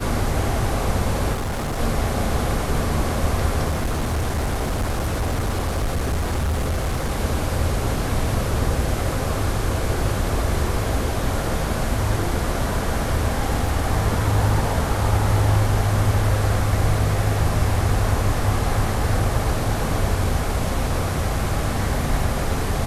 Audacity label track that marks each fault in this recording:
1.330000	1.800000	clipping −22 dBFS
3.690000	7.120000	clipping −18.5 dBFS
13.670000	13.670000	drop-out 2.9 ms

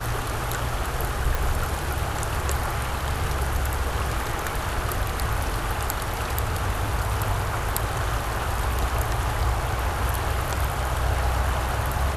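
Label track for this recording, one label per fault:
1.350000	1.350000	click

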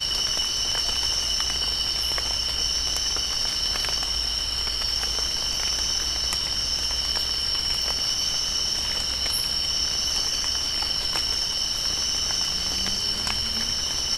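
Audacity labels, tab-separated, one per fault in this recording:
7.820000	7.820000	drop-out 2.6 ms

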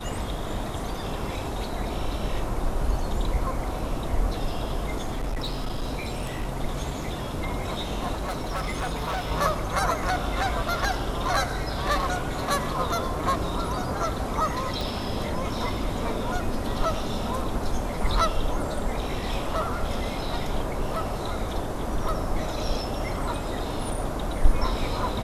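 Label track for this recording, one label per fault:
4.950000	6.480000	clipping −24.5 dBFS
8.120000	9.320000	clipping −24.5 dBFS
14.810000	14.810000	click

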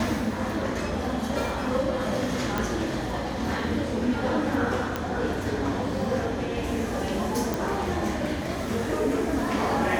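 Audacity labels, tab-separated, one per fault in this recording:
2.580000	2.580000	click
4.960000	4.960000	click −13 dBFS
7.540000	7.540000	click

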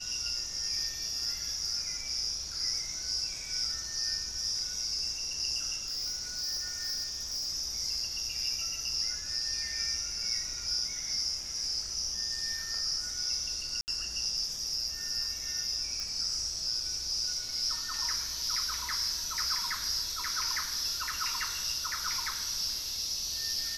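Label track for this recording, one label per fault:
5.860000	7.490000	clipping −31 dBFS
13.810000	13.880000	drop-out 69 ms
16.000000	16.000000	click

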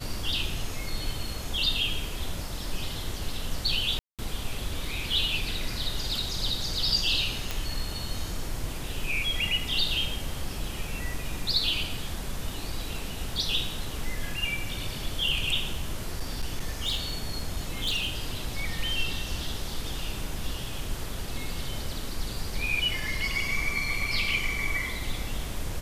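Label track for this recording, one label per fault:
3.990000	4.190000	drop-out 197 ms
7.510000	7.510000	click
15.730000	18.360000	clipping −23.5 dBFS

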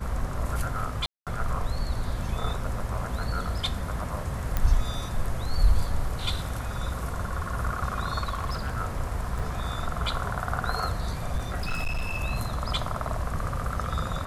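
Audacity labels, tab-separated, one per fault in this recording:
1.060000	1.270000	drop-out 207 ms
4.570000	4.570000	click −12 dBFS
8.230000	8.740000	clipping −25 dBFS
9.390000	9.390000	drop-out 4.7 ms
11.360000	12.240000	clipping −24 dBFS

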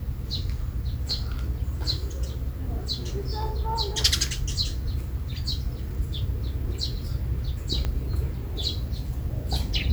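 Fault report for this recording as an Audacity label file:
7.850000	7.850000	click −15 dBFS

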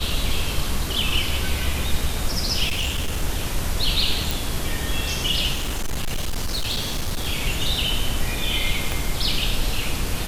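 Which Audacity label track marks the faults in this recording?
2.660000	3.240000	clipping −19.5 dBFS
4.310000	4.310000	click
5.530000	7.270000	clipping −20.5 dBFS
8.920000	8.920000	click

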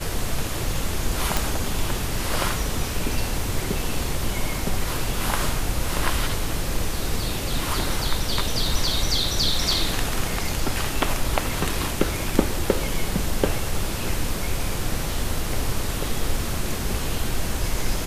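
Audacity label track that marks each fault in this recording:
1.370000	1.370000	click

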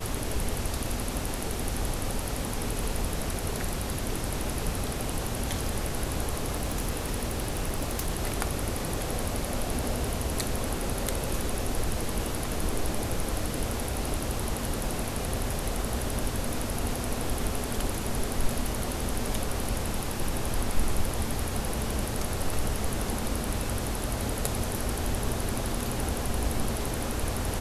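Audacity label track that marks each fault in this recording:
6.500000	8.090000	clipping −23.5 dBFS

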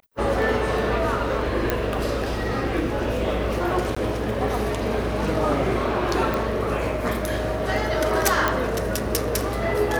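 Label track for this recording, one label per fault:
1.700000	1.700000	click −7 dBFS
3.950000	3.960000	drop-out 15 ms
6.340000	6.340000	click
8.480000	8.480000	click −6 dBFS

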